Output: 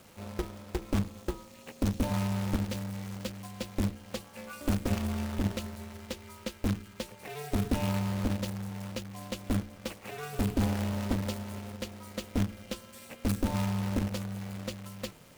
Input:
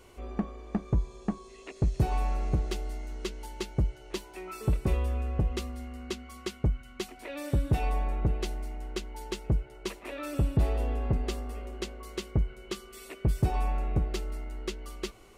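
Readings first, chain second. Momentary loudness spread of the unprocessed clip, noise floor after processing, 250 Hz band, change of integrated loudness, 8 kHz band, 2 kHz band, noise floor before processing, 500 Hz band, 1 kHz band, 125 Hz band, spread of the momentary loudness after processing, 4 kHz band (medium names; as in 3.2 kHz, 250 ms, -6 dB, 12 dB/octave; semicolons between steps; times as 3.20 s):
11 LU, -53 dBFS, +4.0 dB, -1.5 dB, +2.5 dB, +1.5 dB, -51 dBFS, -1.5 dB, -2.0 dB, -2.5 dB, 12 LU, +1.0 dB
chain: companded quantiser 4-bit; de-hum 61.58 Hz, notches 5; ring modulator 150 Hz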